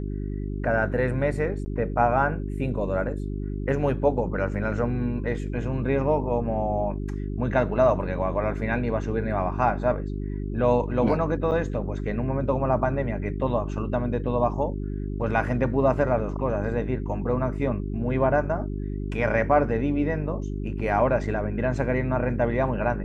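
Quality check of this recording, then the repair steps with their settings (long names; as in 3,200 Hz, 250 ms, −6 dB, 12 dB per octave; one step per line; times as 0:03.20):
mains hum 50 Hz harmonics 8 −30 dBFS
0:01.65–0:01.66: drop-out 10 ms
0:11.51–0:11.52: drop-out 8.5 ms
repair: hum removal 50 Hz, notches 8
repair the gap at 0:01.65, 10 ms
repair the gap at 0:11.51, 8.5 ms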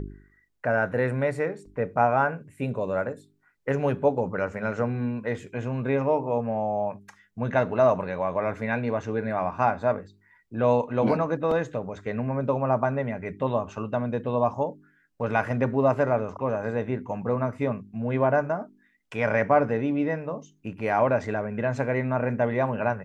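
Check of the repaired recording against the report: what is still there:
none of them is left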